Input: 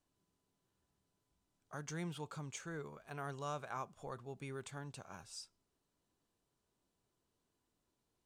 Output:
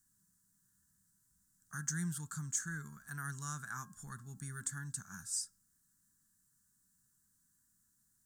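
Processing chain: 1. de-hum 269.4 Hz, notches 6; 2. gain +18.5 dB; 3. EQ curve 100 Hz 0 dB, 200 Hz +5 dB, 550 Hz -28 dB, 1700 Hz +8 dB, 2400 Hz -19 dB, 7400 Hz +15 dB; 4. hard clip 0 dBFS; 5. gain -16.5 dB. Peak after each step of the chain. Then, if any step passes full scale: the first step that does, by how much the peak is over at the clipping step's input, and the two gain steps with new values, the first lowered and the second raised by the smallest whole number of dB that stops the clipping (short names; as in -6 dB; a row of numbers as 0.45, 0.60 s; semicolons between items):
-29.5, -11.0, -5.0, -5.0, -21.5 dBFS; no overload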